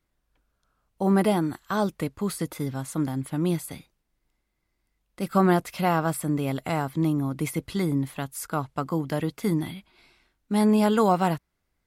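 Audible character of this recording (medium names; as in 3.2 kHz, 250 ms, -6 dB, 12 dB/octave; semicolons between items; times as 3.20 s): noise floor -77 dBFS; spectral tilt -5.5 dB/octave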